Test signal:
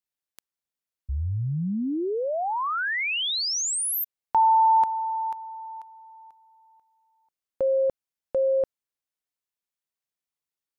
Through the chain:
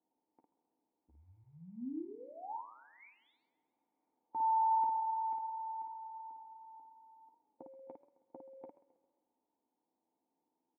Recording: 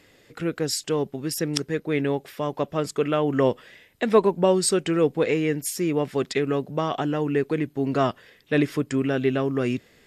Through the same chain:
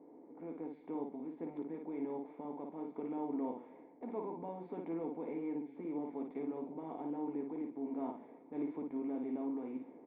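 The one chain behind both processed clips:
compressor on every frequency bin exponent 0.6
low-pass that shuts in the quiet parts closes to 920 Hz, open at −15.5 dBFS
first difference
comb filter 4.2 ms, depth 31%
dynamic equaliser 380 Hz, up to −5 dB, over −55 dBFS, Q 1
transient designer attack −4 dB, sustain +2 dB
formant resonators in series u
ambience of single reflections 12 ms −6.5 dB, 55 ms −4 dB
feedback echo with a swinging delay time 134 ms, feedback 49%, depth 122 cents, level −17 dB
level +15 dB

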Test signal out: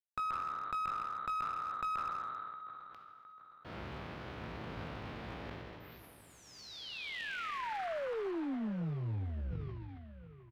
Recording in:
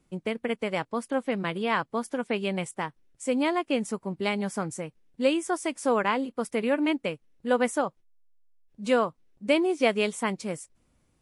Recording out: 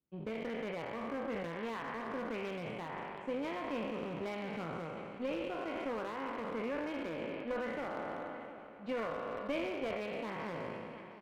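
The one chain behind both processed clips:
peak hold with a decay on every bin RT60 2.07 s
high-pass filter 59 Hz 24 dB per octave
high-shelf EQ 6,000 Hz −5.5 dB
power curve on the samples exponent 1.4
downward compressor 8 to 1, threshold −30 dBFS
high-frequency loss of the air 340 metres
double-tracking delay 18 ms −13 dB
on a send: repeating echo 712 ms, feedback 47%, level −15.5 dB
on the sum: asymmetric clip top −33 dBFS
level that may fall only so fast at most 23 dB per second
level −2.5 dB

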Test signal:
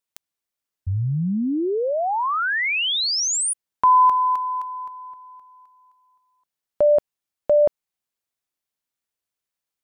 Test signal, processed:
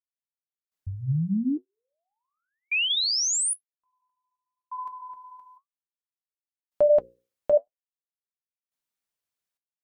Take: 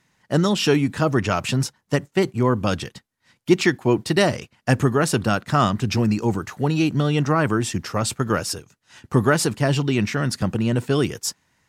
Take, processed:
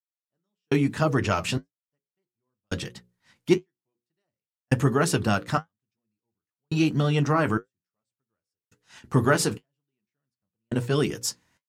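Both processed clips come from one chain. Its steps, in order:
mains-hum notches 60/120/180/240/300/360/420/480/540 Hz
gate pattern ".....xxxxxx..." 105 BPM −60 dB
flanger 1 Hz, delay 4.3 ms, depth 6.8 ms, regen −56%
level +1.5 dB

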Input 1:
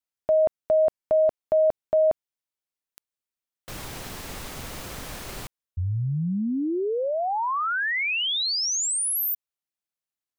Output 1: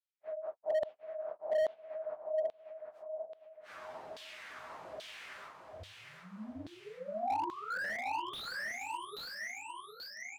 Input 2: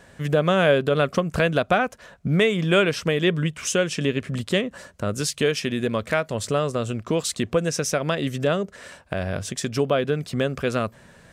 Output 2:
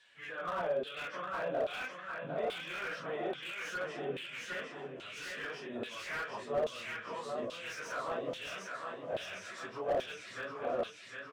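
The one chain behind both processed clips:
random phases in long frames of 100 ms
brickwall limiter −17 dBFS
flanger 0.3 Hz, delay 8 ms, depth 9.2 ms, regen −21%
repeating echo 755 ms, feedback 54%, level −5 dB
auto-filter band-pass saw down 1.2 Hz 560–3,600 Hz
slew-rate limiting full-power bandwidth 24 Hz
level +1 dB

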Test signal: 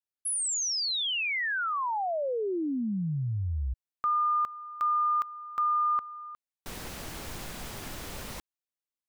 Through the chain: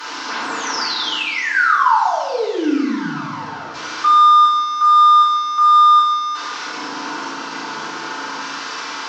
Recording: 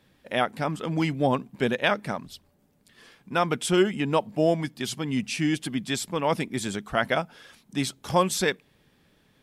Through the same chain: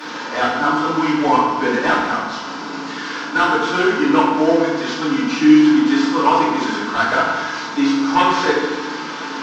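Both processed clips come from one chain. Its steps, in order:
linear delta modulator 32 kbit/s, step −31 dBFS
high-pass filter 230 Hz 24 dB per octave
flat-topped bell 1,200 Hz +10 dB 1 octave
sine wavefolder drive 6 dB, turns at −6 dBFS
feedback delay network reverb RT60 1.2 s, low-frequency decay 1.55×, high-frequency decay 0.8×, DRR −9.5 dB
level −12 dB

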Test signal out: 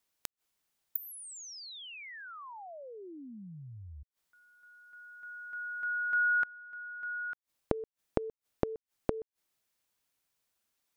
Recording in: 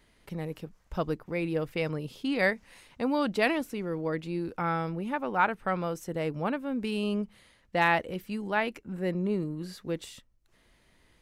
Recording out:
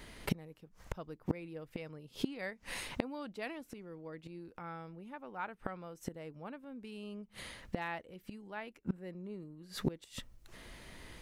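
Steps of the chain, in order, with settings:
gate with flip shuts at −31 dBFS, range −28 dB
level +12 dB

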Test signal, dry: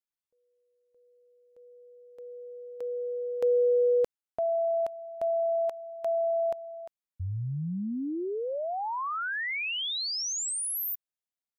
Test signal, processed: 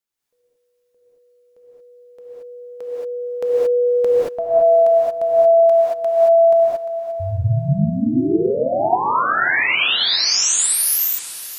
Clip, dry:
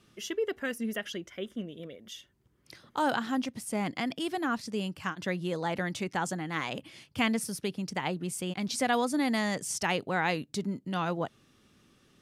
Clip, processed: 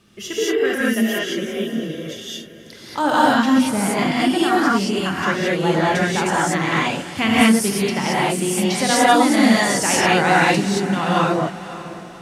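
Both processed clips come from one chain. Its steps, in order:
feedback delay with all-pass diffusion 545 ms, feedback 43%, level −14.5 dB
reverb whose tail is shaped and stops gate 250 ms rising, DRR −7.5 dB
level +6 dB

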